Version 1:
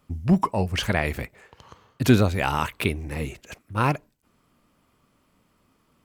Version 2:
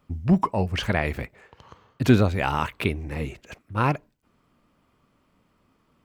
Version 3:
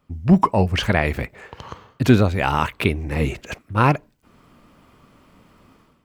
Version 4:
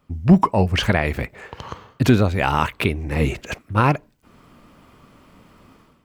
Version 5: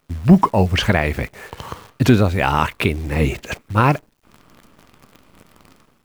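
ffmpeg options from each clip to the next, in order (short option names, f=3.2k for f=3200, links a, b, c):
-af "equalizer=f=12k:w=0.38:g=-9"
-af "dynaudnorm=f=110:g=5:m=14dB,volume=-1dB"
-af "alimiter=limit=-6dB:level=0:latency=1:release=499,volume=2.5dB"
-af "acrusher=bits=8:dc=4:mix=0:aa=0.000001,volume=2dB"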